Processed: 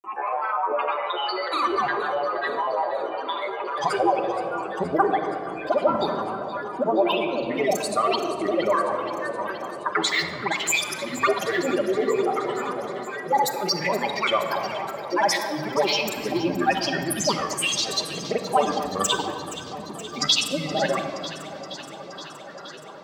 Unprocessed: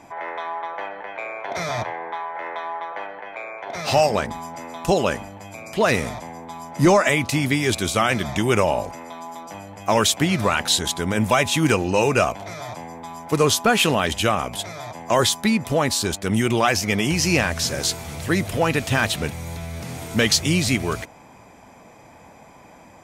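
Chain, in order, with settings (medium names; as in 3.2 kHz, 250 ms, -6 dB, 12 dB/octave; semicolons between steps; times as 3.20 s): spectral contrast enhancement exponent 2.3; granulator, pitch spread up and down by 12 st; high-pass 360 Hz 12 dB/octave; simulated room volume 3300 m³, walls mixed, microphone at 1.2 m; gain riding within 5 dB 0.5 s; on a send: echo whose repeats swap between lows and highs 236 ms, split 1.2 kHz, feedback 86%, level -12.5 dB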